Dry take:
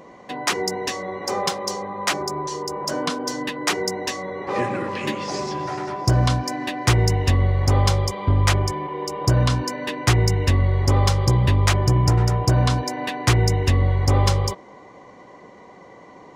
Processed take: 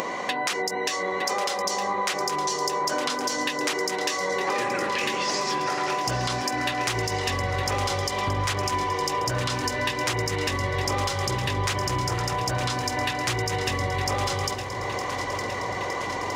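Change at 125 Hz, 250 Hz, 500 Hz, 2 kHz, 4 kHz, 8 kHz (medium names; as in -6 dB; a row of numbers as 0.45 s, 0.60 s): -12.5 dB, -6.0 dB, -2.0 dB, +1.5 dB, -0.5 dB, -1.0 dB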